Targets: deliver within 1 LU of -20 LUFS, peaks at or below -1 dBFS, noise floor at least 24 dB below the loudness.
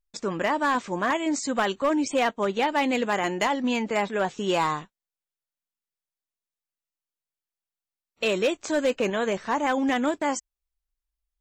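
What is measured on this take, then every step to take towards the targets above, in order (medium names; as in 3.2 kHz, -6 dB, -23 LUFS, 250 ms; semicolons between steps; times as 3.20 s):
clipped samples 0.6%; clipping level -17.0 dBFS; loudness -25.5 LUFS; peak level -17.0 dBFS; loudness target -20.0 LUFS
-> clip repair -17 dBFS; trim +5.5 dB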